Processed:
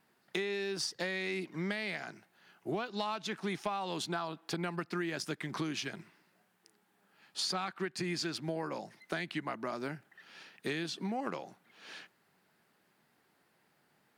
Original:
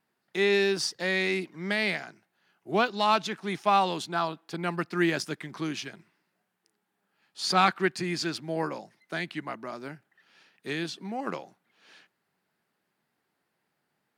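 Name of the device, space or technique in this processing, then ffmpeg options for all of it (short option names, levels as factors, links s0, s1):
serial compression, leveller first: -af "acompressor=threshold=0.0501:ratio=3,acompressor=threshold=0.01:ratio=6,volume=2.11"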